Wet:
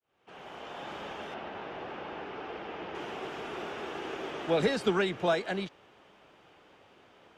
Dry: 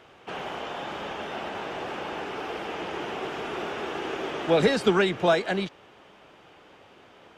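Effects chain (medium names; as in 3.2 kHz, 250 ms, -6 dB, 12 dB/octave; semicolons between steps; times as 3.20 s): fade-in on the opening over 0.89 s; 1.34–2.95 s: distance through air 160 m; trim -6 dB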